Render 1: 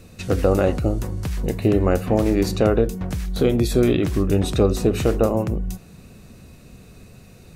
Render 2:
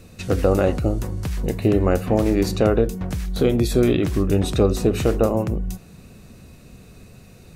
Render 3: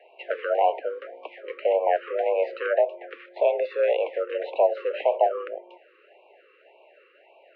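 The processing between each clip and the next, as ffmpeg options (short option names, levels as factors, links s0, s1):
-af anull
-af "highpass=f=340:t=q:w=0.5412,highpass=f=340:t=q:w=1.307,lowpass=f=2600:t=q:w=0.5176,lowpass=f=2600:t=q:w=0.7071,lowpass=f=2600:t=q:w=1.932,afreqshift=170,afftfilt=real='re*(1-between(b*sr/1024,740*pow(1600/740,0.5+0.5*sin(2*PI*1.8*pts/sr))/1.41,740*pow(1600/740,0.5+0.5*sin(2*PI*1.8*pts/sr))*1.41))':imag='im*(1-between(b*sr/1024,740*pow(1600/740,0.5+0.5*sin(2*PI*1.8*pts/sr))/1.41,740*pow(1600/740,0.5+0.5*sin(2*PI*1.8*pts/sr))*1.41))':win_size=1024:overlap=0.75"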